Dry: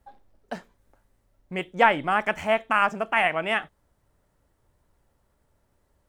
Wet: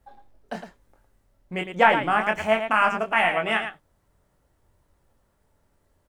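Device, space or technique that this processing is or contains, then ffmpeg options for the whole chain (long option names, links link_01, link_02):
slapback doubling: -filter_complex "[0:a]asplit=3[link_01][link_02][link_03];[link_02]adelay=23,volume=-5dB[link_04];[link_03]adelay=109,volume=-8dB[link_05];[link_01][link_04][link_05]amix=inputs=3:normalize=0"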